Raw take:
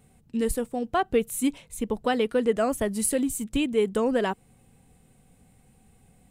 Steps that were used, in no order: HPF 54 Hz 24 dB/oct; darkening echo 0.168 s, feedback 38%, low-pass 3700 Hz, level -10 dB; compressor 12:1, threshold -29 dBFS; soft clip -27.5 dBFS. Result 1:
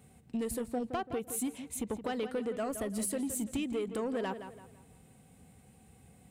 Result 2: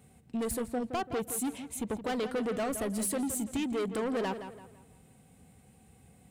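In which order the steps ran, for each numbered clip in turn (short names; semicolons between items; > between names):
HPF > compressor > soft clip > darkening echo; HPF > soft clip > compressor > darkening echo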